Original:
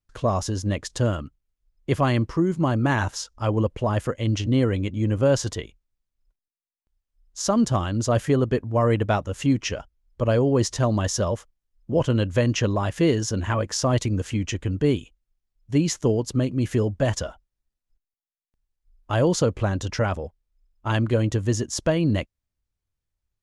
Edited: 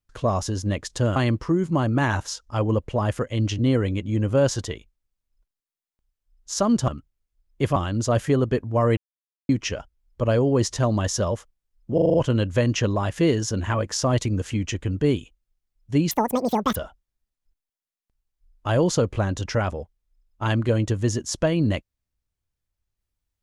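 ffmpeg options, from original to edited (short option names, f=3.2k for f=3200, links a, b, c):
-filter_complex "[0:a]asplit=13[a][b][c][d][e][f][g][h][i][j][k][l][m];[a]atrim=end=1.162[n];[b]atrim=start=2.038:end=7.762[o];[c]atrim=start=1.158:end=2.042[p];[d]atrim=start=7.758:end=8.97,asetpts=PTS-STARTPTS,afade=t=out:st=1.208:d=0.004:c=hsin[q];[e]atrim=start=8.97:end=9.49,asetpts=PTS-STARTPTS,volume=0[r];[f]atrim=start=9.49:end=11.982,asetpts=PTS-STARTPTS,afade=t=in:d=0.004:c=hsin[s];[g]atrim=start=11.938:end=11.982[t];[h]atrim=start=11.938:end=11.982[u];[i]atrim=start=11.938:end=11.982[v];[j]atrim=start=11.938:end=11.982[w];[k]atrim=start=11.938:end=15.914[x];[l]atrim=start=15.91:end=17.2,asetpts=PTS-STARTPTS,asetrate=87759,aresample=44100,atrim=end_sample=28587,asetpts=PTS-STARTPTS[y];[m]atrim=start=17.196[z];[n][o]acrossfade=d=0.004:c1=hsin:c2=hsin[aa];[aa][p]acrossfade=d=0.004:c1=hsin:c2=hsin[ab];[q][r][s]concat=n=3:v=0:a=1[ac];[ab][ac]acrossfade=d=0.004:c1=hsin:c2=hsin[ad];[ad][t]acrossfade=d=0.004:c1=hsin:c2=hsin[ae];[ae][u]acrossfade=d=0.004:c1=hsin:c2=hsin[af];[af][v]acrossfade=d=0.004:c1=hsin:c2=hsin[ag];[ag][w]acrossfade=d=0.004:c1=hsin:c2=hsin[ah];[ah][x]acrossfade=d=0.004:c1=hsin:c2=hsin[ai];[ai][y]acrossfade=d=0.004:c1=hsin:c2=hsin[aj];[aj][z]acrossfade=d=0.004:c1=hsin:c2=hsin"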